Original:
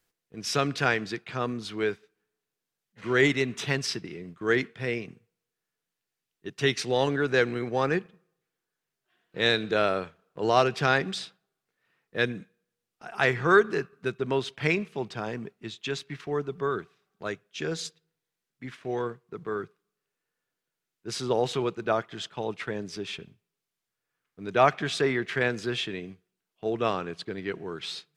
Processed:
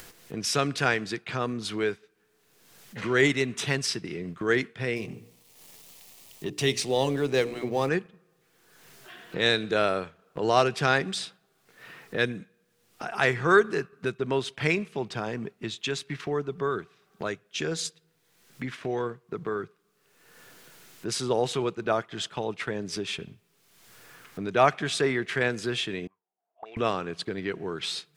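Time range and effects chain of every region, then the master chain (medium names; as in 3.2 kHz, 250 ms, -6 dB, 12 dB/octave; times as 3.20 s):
4.96–7.89 s: companding laws mixed up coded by mu + peaking EQ 1.5 kHz -11.5 dB 0.54 oct + hum notches 60/120/180/240/300/360/420/480/540 Hz
26.07–26.77 s: median filter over 9 samples + auto-wah 660–2300 Hz, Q 15, up, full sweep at -32 dBFS
whole clip: dynamic bell 9.3 kHz, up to +7 dB, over -54 dBFS, Q 1.2; upward compressor, threshold -26 dBFS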